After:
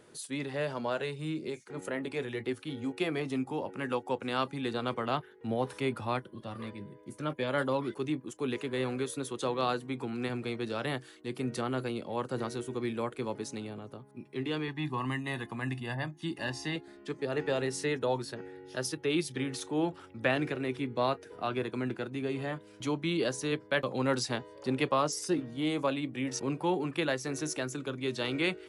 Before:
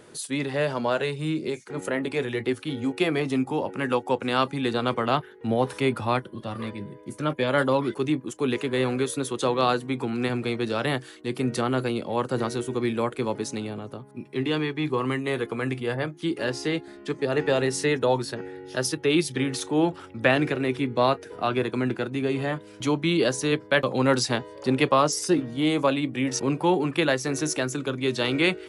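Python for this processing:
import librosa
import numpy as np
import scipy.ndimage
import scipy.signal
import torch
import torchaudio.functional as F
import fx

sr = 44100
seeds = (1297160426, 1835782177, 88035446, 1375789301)

y = fx.comb(x, sr, ms=1.1, depth=0.73, at=(14.68, 16.76))
y = y * librosa.db_to_amplitude(-8.0)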